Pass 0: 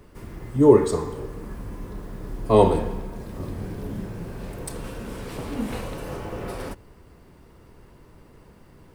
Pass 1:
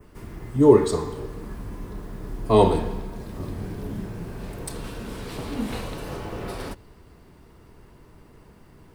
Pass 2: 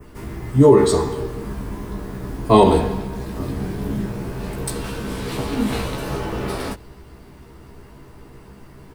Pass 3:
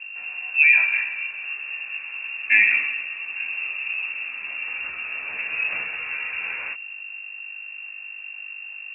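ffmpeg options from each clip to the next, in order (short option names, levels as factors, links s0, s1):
-af "bandreject=f=530:w=12,adynamicequalizer=threshold=0.00178:dfrequency=4000:dqfactor=1.9:tfrequency=4000:tqfactor=1.9:attack=5:release=100:ratio=0.375:range=2.5:mode=boostabove:tftype=bell"
-filter_complex "[0:a]asplit=2[s0][s1];[s1]adelay=15,volume=0.668[s2];[s0][s2]amix=inputs=2:normalize=0,alimiter=level_in=2.24:limit=0.891:release=50:level=0:latency=1,volume=0.891"
-af "aeval=exprs='val(0)+0.0282*(sin(2*PI*50*n/s)+sin(2*PI*2*50*n/s)/2+sin(2*PI*3*50*n/s)/3+sin(2*PI*4*50*n/s)/4+sin(2*PI*5*50*n/s)/5)':c=same,lowpass=f=2400:t=q:w=0.5098,lowpass=f=2400:t=q:w=0.6013,lowpass=f=2400:t=q:w=0.9,lowpass=f=2400:t=q:w=2.563,afreqshift=-2800,volume=0.562"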